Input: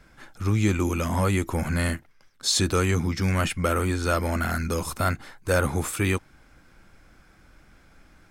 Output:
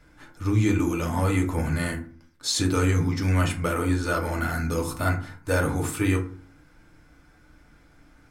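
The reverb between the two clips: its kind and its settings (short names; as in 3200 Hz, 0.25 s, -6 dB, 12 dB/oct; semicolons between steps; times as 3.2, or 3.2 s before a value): FDN reverb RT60 0.44 s, low-frequency decay 1.5×, high-frequency decay 0.5×, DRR 0.5 dB; gain -4 dB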